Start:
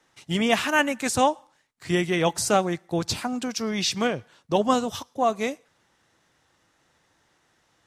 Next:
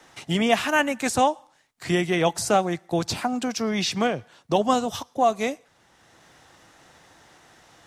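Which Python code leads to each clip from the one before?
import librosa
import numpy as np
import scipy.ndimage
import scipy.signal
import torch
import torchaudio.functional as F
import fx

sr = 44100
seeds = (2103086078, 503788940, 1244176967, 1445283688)

y = fx.peak_eq(x, sr, hz=720.0, db=4.5, octaves=0.36)
y = fx.band_squash(y, sr, depth_pct=40)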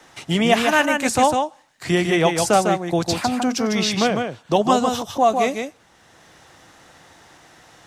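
y = x + 10.0 ** (-5.0 / 20.0) * np.pad(x, (int(152 * sr / 1000.0), 0))[:len(x)]
y = F.gain(torch.from_numpy(y), 3.5).numpy()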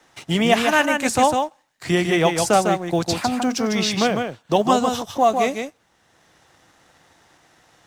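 y = fx.law_mismatch(x, sr, coded='A')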